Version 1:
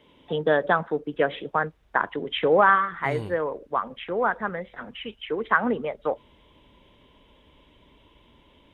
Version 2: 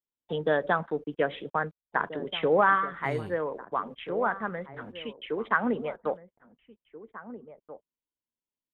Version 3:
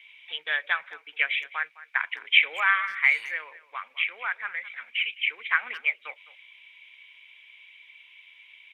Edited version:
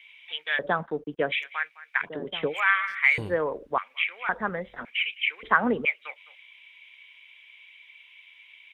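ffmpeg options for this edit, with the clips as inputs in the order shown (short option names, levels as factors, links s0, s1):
-filter_complex "[1:a]asplit=2[s0][s1];[0:a]asplit=3[s2][s3][s4];[2:a]asplit=6[s5][s6][s7][s8][s9][s10];[s5]atrim=end=0.592[s11];[s0]atrim=start=0.588:end=1.322[s12];[s6]atrim=start=1.318:end=2.1[s13];[s1]atrim=start=2:end=2.55[s14];[s7]atrim=start=2.45:end=3.182[s15];[s2]atrim=start=3.178:end=3.782[s16];[s8]atrim=start=3.778:end=4.292[s17];[s3]atrim=start=4.288:end=4.852[s18];[s9]atrim=start=4.848:end=5.432[s19];[s4]atrim=start=5.428:end=5.852[s20];[s10]atrim=start=5.848[s21];[s11][s12]acrossfade=d=0.004:c1=hsin:c2=hsin[s22];[s22][s13]acrossfade=d=0.004:c1=hsin:c2=hsin[s23];[s23][s14]acrossfade=d=0.1:c1=tri:c2=tri[s24];[s24][s15]acrossfade=d=0.1:c1=tri:c2=tri[s25];[s25][s16]acrossfade=d=0.004:c1=hsin:c2=hsin[s26];[s26][s17]acrossfade=d=0.004:c1=hsin:c2=hsin[s27];[s27][s18]acrossfade=d=0.004:c1=hsin:c2=hsin[s28];[s28][s19]acrossfade=d=0.004:c1=hsin:c2=hsin[s29];[s29][s20]acrossfade=d=0.004:c1=hsin:c2=hsin[s30];[s30][s21]acrossfade=d=0.004:c1=hsin:c2=hsin"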